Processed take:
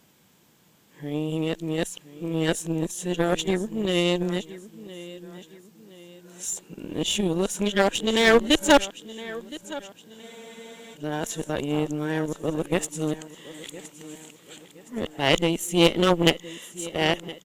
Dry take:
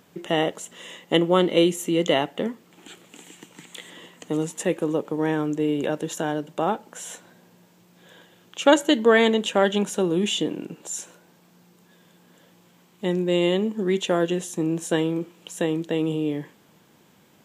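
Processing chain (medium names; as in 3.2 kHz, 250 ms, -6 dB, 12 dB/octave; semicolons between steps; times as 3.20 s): reverse the whole clip; on a send: feedback delay 1017 ms, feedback 41%, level -14 dB; on the sum: Chebyshev shaper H 4 -17 dB, 7 -23 dB, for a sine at -2 dBFS; bass shelf 100 Hz +8.5 dB; one-sided clip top -13 dBFS, bottom -5 dBFS; treble shelf 2.8 kHz +8 dB; spectral freeze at 10.23 s, 0.71 s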